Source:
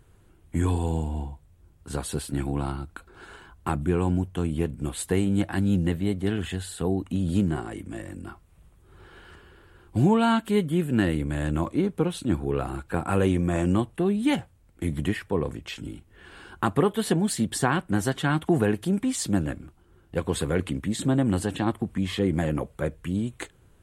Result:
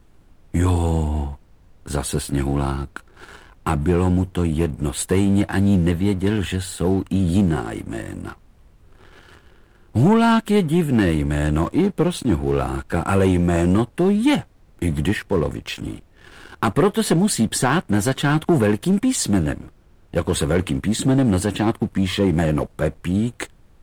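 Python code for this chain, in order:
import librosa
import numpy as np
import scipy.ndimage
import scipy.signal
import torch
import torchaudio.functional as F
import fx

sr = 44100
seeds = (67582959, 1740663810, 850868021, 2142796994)

y = fx.leveller(x, sr, passes=2)
y = fx.dmg_noise_colour(y, sr, seeds[0], colour='brown', level_db=-50.0)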